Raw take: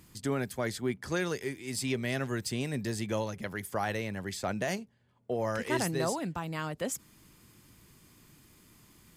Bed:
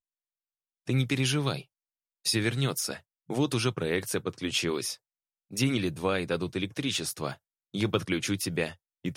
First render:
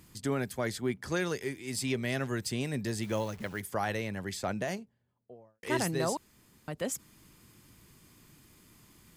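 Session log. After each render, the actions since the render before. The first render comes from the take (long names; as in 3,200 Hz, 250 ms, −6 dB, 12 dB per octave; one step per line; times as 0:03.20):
0:03.03–0:03.61: hold until the input has moved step −48 dBFS
0:04.35–0:05.63: fade out and dull
0:06.17–0:06.68: fill with room tone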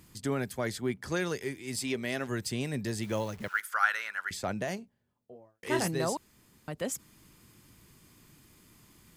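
0:01.76–0:02.29: parametric band 130 Hz −8.5 dB
0:03.48–0:04.31: high-pass with resonance 1,400 Hz, resonance Q 8.5
0:04.81–0:05.88: double-tracking delay 21 ms −8 dB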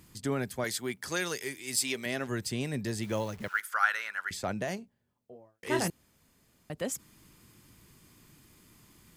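0:00.64–0:02.06: spectral tilt +2.5 dB per octave
0:05.90–0:06.70: fill with room tone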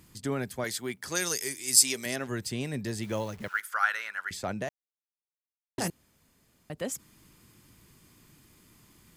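0:01.15–0:02.16: flat-topped bell 7,800 Hz +10.5 dB
0:04.69–0:05.78: silence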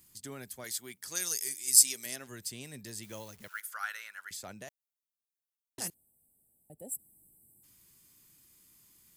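0:05.94–0:07.63: gain on a spectral selection 900–7,500 Hz −24 dB
first-order pre-emphasis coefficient 0.8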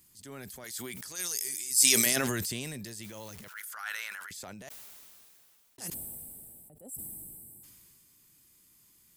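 transient designer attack −8 dB, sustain +6 dB
level that may fall only so fast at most 21 dB per second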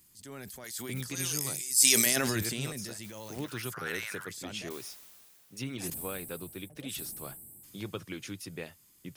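mix in bed −11.5 dB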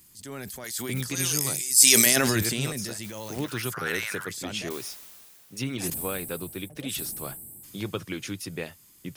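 level +6.5 dB
brickwall limiter −1 dBFS, peak gain reduction 3 dB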